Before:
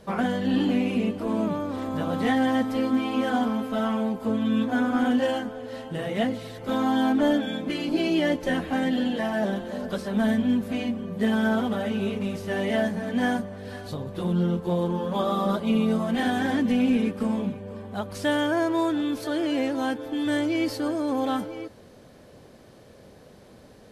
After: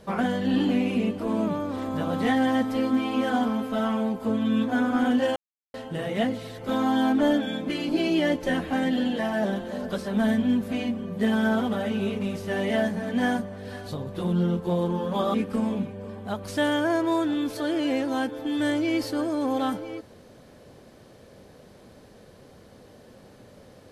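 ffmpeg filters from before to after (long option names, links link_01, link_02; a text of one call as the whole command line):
ffmpeg -i in.wav -filter_complex "[0:a]asplit=4[link_01][link_02][link_03][link_04];[link_01]atrim=end=5.36,asetpts=PTS-STARTPTS,afade=type=out:start_time=5.356:duration=0.004:curve=hsin[link_05];[link_02]atrim=start=5.36:end=5.74,asetpts=PTS-STARTPTS,volume=0[link_06];[link_03]atrim=start=5.74:end=15.342,asetpts=PTS-STARTPTS,afade=type=in:duration=0.004:curve=hsin[link_07];[link_04]atrim=start=17.008[link_08];[link_05][link_06][link_07]concat=n=3:v=0:a=1[link_09];[link_09][link_08]acrossfade=duration=0.004:curve1=hsin:curve2=hsin" out.wav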